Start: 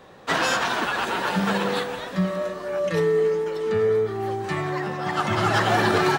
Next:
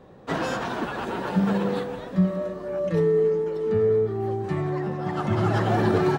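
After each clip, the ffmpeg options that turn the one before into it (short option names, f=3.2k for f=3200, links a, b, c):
-af "tiltshelf=f=760:g=8,volume=-4dB"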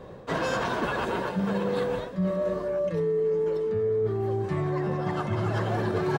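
-af "aecho=1:1:1.9:0.31,areverse,acompressor=threshold=-30dB:ratio=6,areverse,volume=5.5dB"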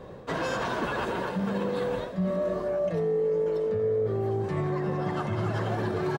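-filter_complex "[0:a]alimiter=limit=-20.5dB:level=0:latency=1:release=81,asplit=7[a][b][c][d][e][f][g];[b]adelay=82,afreqshift=50,volume=-16dB[h];[c]adelay=164,afreqshift=100,volume=-20dB[i];[d]adelay=246,afreqshift=150,volume=-24dB[j];[e]adelay=328,afreqshift=200,volume=-28dB[k];[f]adelay=410,afreqshift=250,volume=-32.1dB[l];[g]adelay=492,afreqshift=300,volume=-36.1dB[m];[a][h][i][j][k][l][m]amix=inputs=7:normalize=0"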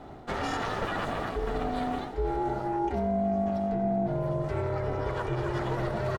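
-af "aeval=exprs='val(0)*sin(2*PI*240*n/s)':c=same,volume=1.5dB"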